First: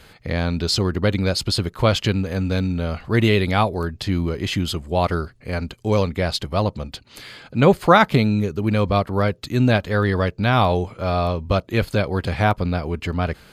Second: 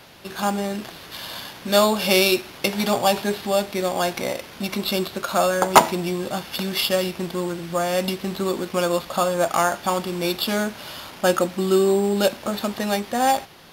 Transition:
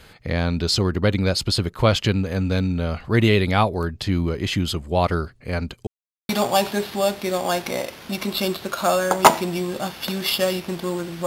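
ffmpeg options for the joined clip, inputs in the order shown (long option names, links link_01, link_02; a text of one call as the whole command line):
ffmpeg -i cue0.wav -i cue1.wav -filter_complex "[0:a]apad=whole_dur=11.26,atrim=end=11.26,asplit=2[link_01][link_02];[link_01]atrim=end=5.87,asetpts=PTS-STARTPTS,afade=type=out:start_time=5.866:duration=0.004:curve=hsin[link_03];[link_02]atrim=start=5.87:end=6.29,asetpts=PTS-STARTPTS,volume=0[link_04];[1:a]atrim=start=2.8:end=7.77,asetpts=PTS-STARTPTS,afade=type=in:duration=0.004:curve=hsin[link_05];[link_03][link_04][link_05]concat=n=3:v=0:a=1" out.wav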